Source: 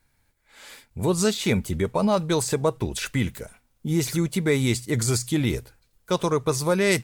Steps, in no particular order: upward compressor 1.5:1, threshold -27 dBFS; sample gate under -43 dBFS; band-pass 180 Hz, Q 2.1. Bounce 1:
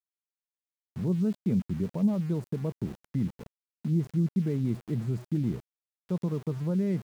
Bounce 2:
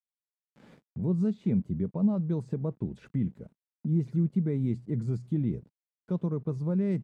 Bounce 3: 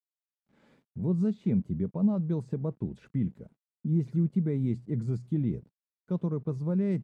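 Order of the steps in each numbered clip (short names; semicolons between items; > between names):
band-pass > upward compressor > sample gate; sample gate > band-pass > upward compressor; upward compressor > sample gate > band-pass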